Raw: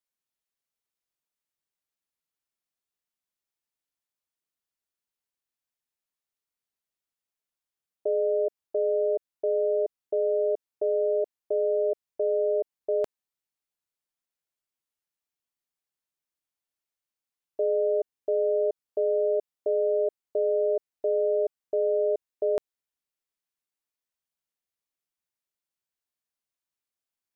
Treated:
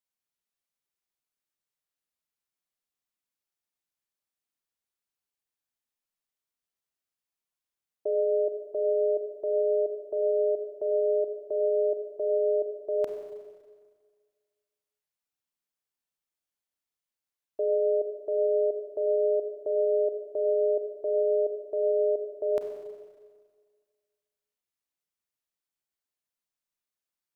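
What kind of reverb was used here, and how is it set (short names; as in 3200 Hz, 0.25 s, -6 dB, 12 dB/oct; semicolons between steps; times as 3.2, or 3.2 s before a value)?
Schroeder reverb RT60 1.7 s, combs from 31 ms, DRR 4.5 dB; gain -2.5 dB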